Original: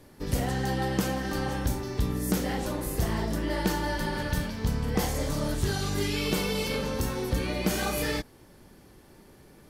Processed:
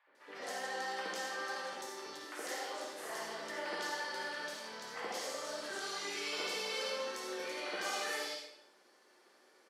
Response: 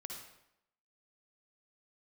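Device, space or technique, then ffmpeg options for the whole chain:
supermarket ceiling speaker: -filter_complex "[0:a]highpass=290,lowpass=6800,highpass=610[s0];[1:a]atrim=start_sample=2205[s1];[s0][s1]afir=irnorm=-1:irlink=0,asettb=1/sr,asplit=3[s2][s3][s4];[s2]atrim=end=2.174[s5];[s3]atrim=start=2.17:end=2.77,asetpts=PTS-STARTPTS,afade=t=in:d=0.004:c=qsin,afade=t=out:st=0.596:d=0.004:c=qsin,highpass=f=250:w=0.5412,highpass=f=250:w=1.3066[s6];[s4]atrim=start=2.766[s7];[s5][s6]acrossfade=d=0.004:c1=hsin:c2=qsin[s8];[s8][s7]acrossfade=d=0.004:c1=qsin:c2=hsin,acrossover=split=870|2800[s9][s10][s11];[s9]adelay=70[s12];[s11]adelay=150[s13];[s12][s10][s13]amix=inputs=3:normalize=0"

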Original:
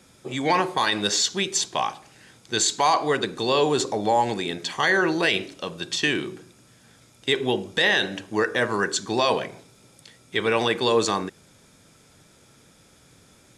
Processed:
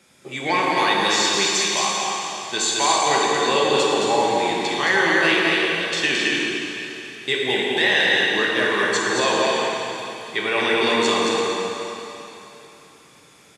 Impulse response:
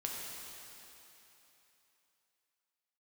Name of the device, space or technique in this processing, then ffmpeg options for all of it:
stadium PA: -filter_complex "[0:a]highpass=f=180:p=1,equalizer=f=2300:t=o:w=0.76:g=5,aecho=1:1:218.7|274.1:0.631|0.355[s0];[1:a]atrim=start_sample=2205[s1];[s0][s1]afir=irnorm=-1:irlink=0"

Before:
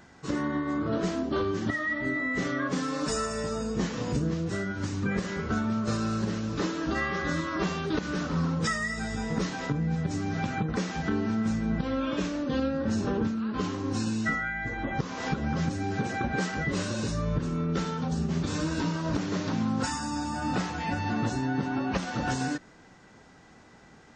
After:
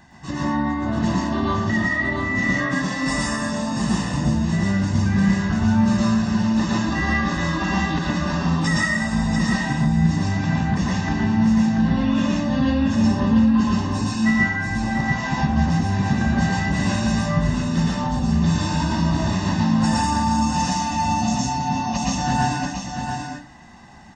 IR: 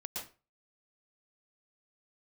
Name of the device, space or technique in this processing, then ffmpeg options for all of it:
microphone above a desk: -filter_complex "[0:a]asettb=1/sr,asplit=3[s0][s1][s2];[s0]atrim=end=20.314[s3];[s1]atrim=start=20.31:end=22.18,asetpts=PTS-STARTPTS,afade=t=in:d=0.004:c=qsin,afade=t=out:st=1.866:d=0.004:c=qsin,equalizer=f=100:t=o:w=0.67:g=-9,equalizer=f=400:t=o:w=0.67:g=-9,equalizer=f=1600:t=o:w=0.67:g=-11,equalizer=f=6300:t=o:w=0.67:g=11[s4];[s2]atrim=start=22.176[s5];[s3][s4]acrossfade=d=0.004:c1=hsin:c2=qsin[s6];[s6][s5]acrossfade=d=0.004:c1=qsin:c2=hsin,aecho=1:1:1.1:0.81,aecho=1:1:686:0.501[s7];[1:a]atrim=start_sample=2205[s8];[s7][s8]afir=irnorm=-1:irlink=0,volume=1.88"

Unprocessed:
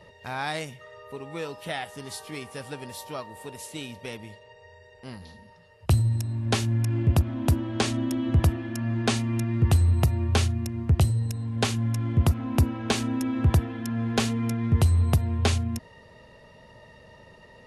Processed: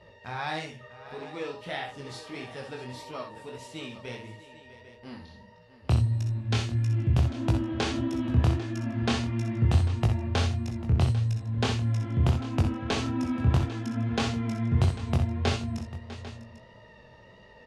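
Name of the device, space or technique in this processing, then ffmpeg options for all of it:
double-tracked vocal: -filter_complex "[0:a]asplit=2[s0][s1];[s1]adelay=16,volume=0.282[s2];[s0][s2]amix=inputs=2:normalize=0,flanger=delay=18:depth=7.7:speed=1.6,lowpass=5500,asettb=1/sr,asplit=3[s3][s4][s5];[s3]atrim=end=6.414[s6];[s4]atrim=start=6.41:end=7.17,asetpts=PTS-STARTPTS,afade=t=in:d=0.004:c=qsin,afade=t=out:st=0.756:d=0.004:c=qsin,equalizer=f=630:w=0.53:g=-5.5[s7];[s5]atrim=start=7.166[s8];[s6][s7]acrossfade=d=0.004:c1=hsin:c2=qsin[s9];[s9][s8]acrossfade=d=0.004:c1=qsin:c2=hsin,aecho=1:1:55|64|649|796:0.251|0.398|0.168|0.158"

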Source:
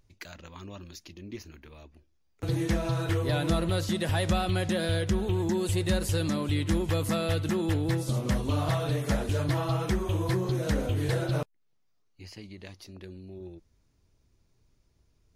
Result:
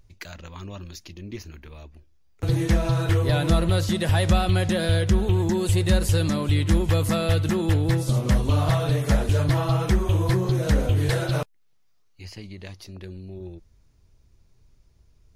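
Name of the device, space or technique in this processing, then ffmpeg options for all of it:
low shelf boost with a cut just above: -filter_complex "[0:a]asettb=1/sr,asplit=3[s0][s1][s2];[s0]atrim=end=11.094[s3];[s1]atrim=start=11.09:end=12.25,asetpts=PTS-STARTPTS,afade=t=in:d=0.004:c=qsin,afade=t=out:st=1.156:d=0.004:c=qsin,tiltshelf=f=670:g=-3[s4];[s2]atrim=start=12.246[s5];[s3][s4]acrossfade=d=0.004:c1=hsin:c2=qsin[s6];[s6][s5]acrossfade=d=0.004:c1=qsin:c2=hsin,lowshelf=f=94:g=7.5,equalizer=f=280:t=o:w=0.62:g=-3,volume=1.68"

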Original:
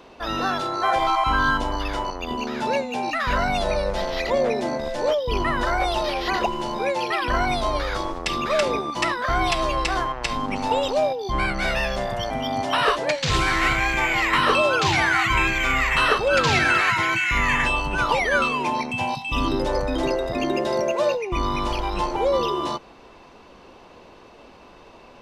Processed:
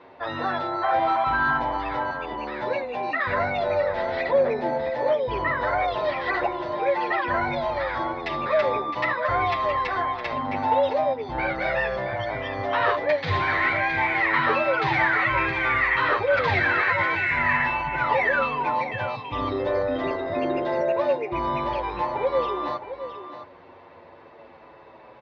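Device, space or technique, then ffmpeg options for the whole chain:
barber-pole flanger into a guitar amplifier: -filter_complex "[0:a]asplit=2[s0][s1];[s1]adelay=8.2,afreqshift=-0.3[s2];[s0][s2]amix=inputs=2:normalize=1,asoftclip=type=tanh:threshold=0.178,highpass=90,equalizer=f=98:t=q:w=4:g=7,equalizer=f=210:t=q:w=4:g=-7,equalizer=f=570:t=q:w=4:g=5,equalizer=f=910:t=q:w=4:g=4,equalizer=f=1900:t=q:w=4:g=7,equalizer=f=2900:t=q:w=4:g=-8,lowpass=f=3600:w=0.5412,lowpass=f=3600:w=1.3066,aecho=1:1:664:0.282"

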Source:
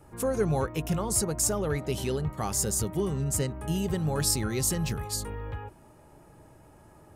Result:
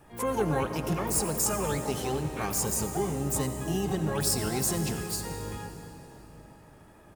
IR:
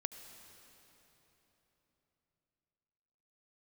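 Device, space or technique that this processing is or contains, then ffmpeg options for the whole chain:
shimmer-style reverb: -filter_complex "[0:a]equalizer=f=76:w=1.3:g=-5,asplit=2[s0][s1];[s1]adelay=87.46,volume=0.1,highshelf=f=4000:g=-1.97[s2];[s0][s2]amix=inputs=2:normalize=0,asplit=2[s3][s4];[s4]asetrate=88200,aresample=44100,atempo=0.5,volume=0.562[s5];[s3][s5]amix=inputs=2:normalize=0[s6];[1:a]atrim=start_sample=2205[s7];[s6][s7]afir=irnorm=-1:irlink=0"

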